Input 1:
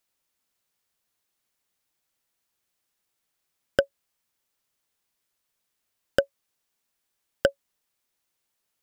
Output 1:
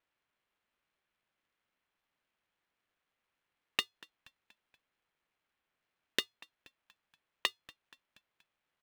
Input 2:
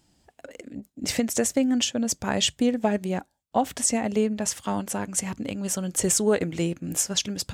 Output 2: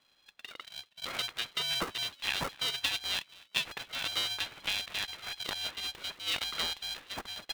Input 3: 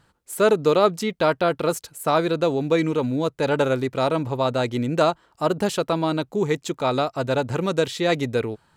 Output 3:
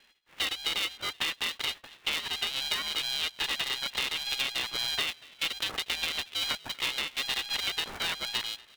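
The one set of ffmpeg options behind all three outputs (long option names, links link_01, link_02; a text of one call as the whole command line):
ffmpeg -i in.wav -filter_complex "[0:a]highpass=46,equalizer=frequency=310:width_type=o:width=2.2:gain=-13.5,acompressor=threshold=-30dB:ratio=12,asplit=2[link_01][link_02];[link_02]asplit=4[link_03][link_04][link_05][link_06];[link_03]adelay=238,afreqshift=56,volume=-23dB[link_07];[link_04]adelay=476,afreqshift=112,volume=-28.4dB[link_08];[link_05]adelay=714,afreqshift=168,volume=-33.7dB[link_09];[link_06]adelay=952,afreqshift=224,volume=-39.1dB[link_10];[link_07][link_08][link_09][link_10]amix=inputs=4:normalize=0[link_11];[link_01][link_11]amix=inputs=2:normalize=0,lowpass=frequency=3200:width_type=q:width=0.5098,lowpass=frequency=3200:width_type=q:width=0.6013,lowpass=frequency=3200:width_type=q:width=0.9,lowpass=frequency=3200:width_type=q:width=2.563,afreqshift=-3800,aeval=exprs='val(0)*sgn(sin(2*PI*410*n/s))':channel_layout=same,volume=3dB" out.wav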